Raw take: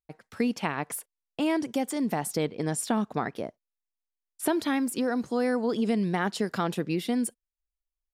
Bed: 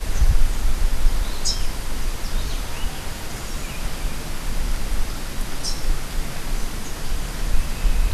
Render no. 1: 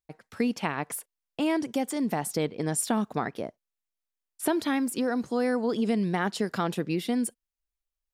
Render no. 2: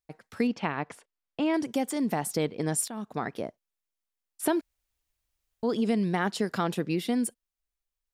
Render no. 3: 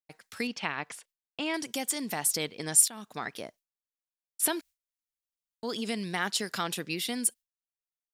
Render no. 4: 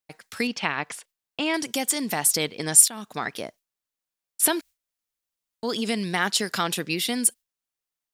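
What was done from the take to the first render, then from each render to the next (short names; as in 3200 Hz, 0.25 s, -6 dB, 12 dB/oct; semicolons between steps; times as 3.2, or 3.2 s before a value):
2.75–3.26 high shelf 9300 Hz +7.5 dB
0.47–1.54 air absorption 130 m; 2.88–3.34 fade in, from -17 dB; 4.61–5.63 room tone
tilt shelf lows -9 dB, about 1500 Hz; gate with hold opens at -49 dBFS
gain +6.5 dB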